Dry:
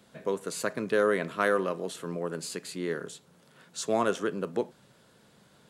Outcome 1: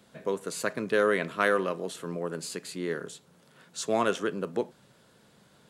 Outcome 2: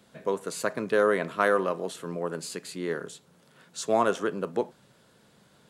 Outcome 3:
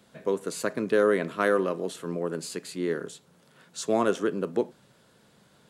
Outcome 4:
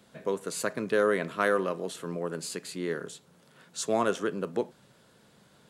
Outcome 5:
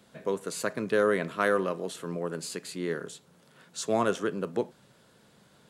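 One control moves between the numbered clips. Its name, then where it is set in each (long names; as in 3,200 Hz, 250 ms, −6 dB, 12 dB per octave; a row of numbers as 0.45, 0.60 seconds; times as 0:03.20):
dynamic equaliser, frequency: 2,700, 850, 310, 9,500, 110 Hertz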